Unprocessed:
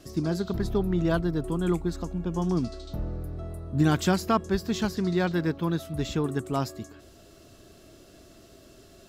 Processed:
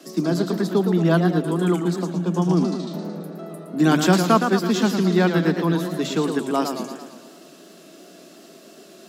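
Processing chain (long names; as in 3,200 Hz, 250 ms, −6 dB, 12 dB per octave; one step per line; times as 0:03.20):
Butterworth high-pass 160 Hz 96 dB per octave
feedback echo with a swinging delay time 112 ms, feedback 58%, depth 156 cents, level −7 dB
level +6.5 dB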